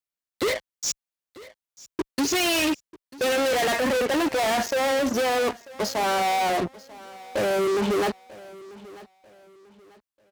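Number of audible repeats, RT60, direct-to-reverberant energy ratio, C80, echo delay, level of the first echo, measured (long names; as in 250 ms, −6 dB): 2, no reverb audible, no reverb audible, no reverb audible, 942 ms, −20.0 dB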